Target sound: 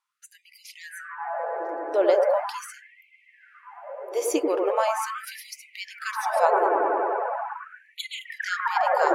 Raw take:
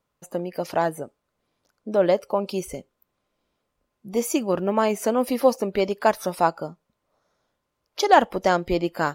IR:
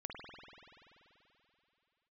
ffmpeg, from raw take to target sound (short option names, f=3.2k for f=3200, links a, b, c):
-filter_complex "[0:a]asettb=1/sr,asplit=3[a][b][c];[a]atrim=end=6.454[d];[b]atrim=start=6.45:end=8.25,asetpts=PTS-STARTPTS,afade=t=in:d=0.004:c=qsin,afade=t=out:st=1.796:d=0.004:c=qsin,asuperstop=centerf=5400:order=20:qfactor=2.4[e];[c]atrim=start=8.246[f];[d][e]acrossfade=d=0.004:c1=hsin:c2=qsin[g];[g][f]acrossfade=d=0.004:c1=qsin:c2=hsin[h];[1:a]atrim=start_sample=2205,asetrate=22932,aresample=44100[i];[h][i]afir=irnorm=-1:irlink=0,afftfilt=real='re*gte(b*sr/1024,280*pow(2000/280,0.5+0.5*sin(2*PI*0.4*pts/sr)))':imag='im*gte(b*sr/1024,280*pow(2000/280,0.5+0.5*sin(2*PI*0.4*pts/sr)))':win_size=1024:overlap=0.75"